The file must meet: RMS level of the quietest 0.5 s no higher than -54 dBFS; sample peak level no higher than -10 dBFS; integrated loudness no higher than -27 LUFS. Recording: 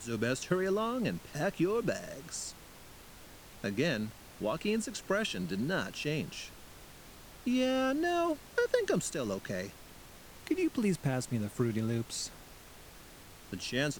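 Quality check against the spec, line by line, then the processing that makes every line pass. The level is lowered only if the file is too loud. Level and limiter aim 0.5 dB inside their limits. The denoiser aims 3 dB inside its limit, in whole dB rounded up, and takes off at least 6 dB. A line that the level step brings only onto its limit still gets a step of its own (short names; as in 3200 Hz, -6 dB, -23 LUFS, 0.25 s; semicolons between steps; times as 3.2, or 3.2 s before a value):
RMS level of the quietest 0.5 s -52 dBFS: fail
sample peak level -15.5 dBFS: OK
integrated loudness -33.5 LUFS: OK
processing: denoiser 6 dB, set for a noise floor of -52 dBFS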